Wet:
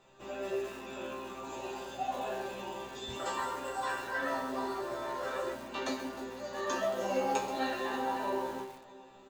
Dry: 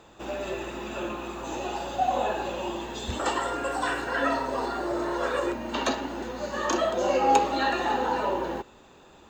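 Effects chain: chord resonator C3 fifth, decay 0.32 s; feedback delay 309 ms, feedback 58%, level -18 dB; bit-crushed delay 131 ms, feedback 35%, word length 8-bit, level -11 dB; trim +5.5 dB

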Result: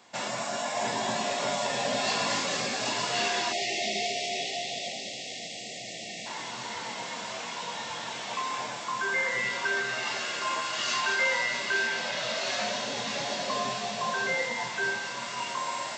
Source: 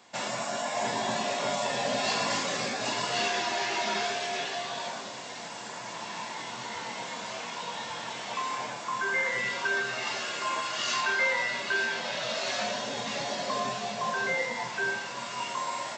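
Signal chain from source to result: feedback echo behind a high-pass 221 ms, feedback 84%, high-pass 2.6 kHz, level -7.5 dB; spectral selection erased 3.52–6.26 s, 810–1800 Hz

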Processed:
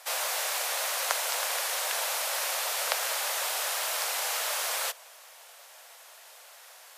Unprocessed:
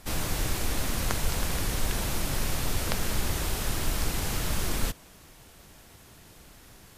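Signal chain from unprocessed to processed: steep high-pass 530 Hz 48 dB/octave; trim +4 dB

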